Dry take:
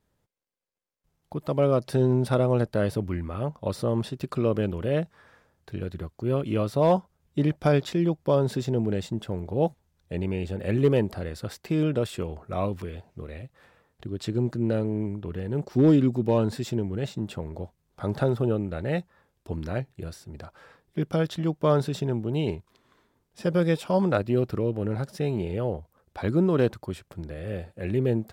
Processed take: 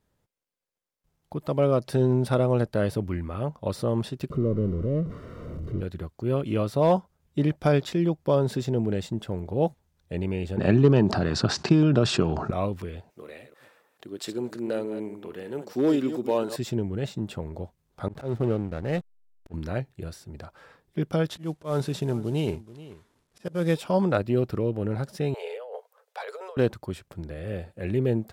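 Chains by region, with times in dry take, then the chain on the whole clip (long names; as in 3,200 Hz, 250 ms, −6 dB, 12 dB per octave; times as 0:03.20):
0:04.30–0:05.81: converter with a step at zero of −26 dBFS + moving average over 53 samples
0:10.57–0:12.51: transient designer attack +8 dB, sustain +4 dB + loudspeaker in its box 130–6,100 Hz, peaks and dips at 130 Hz +4 dB, 510 Hz −10 dB, 2,100 Hz −10 dB, 3,300 Hz −6 dB + envelope flattener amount 50%
0:13.10–0:16.56: delay that plays each chunk backwards 146 ms, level −10.5 dB + high-pass filter 330 Hz + high-shelf EQ 7,400 Hz +9 dB
0:18.08–0:19.54: slack as between gear wheels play −33 dBFS + volume swells 137 ms
0:21.29–0:23.75: variable-slope delta modulation 64 kbit/s + volume swells 183 ms + single-tap delay 430 ms −17.5 dB
0:25.34–0:26.57: Chebyshev high-pass filter 430 Hz, order 8 + compressor whose output falls as the input rises −37 dBFS
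whole clip: no processing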